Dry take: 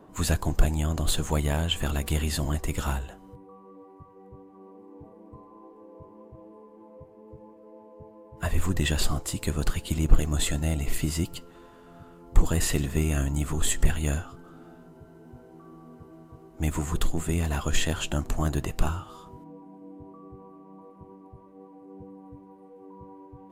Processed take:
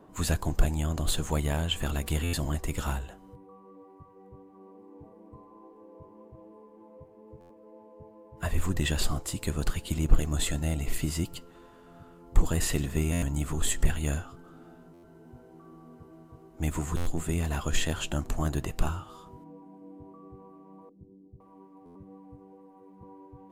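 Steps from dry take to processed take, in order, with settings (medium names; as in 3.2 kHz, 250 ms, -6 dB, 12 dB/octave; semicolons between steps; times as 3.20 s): 20.89–23.03 s: bands offset in time lows, highs 510 ms, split 420 Hz; buffer glitch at 2.23/7.40/13.12/14.93/16.96/21.85 s, samples 512, times 8; trim -2.5 dB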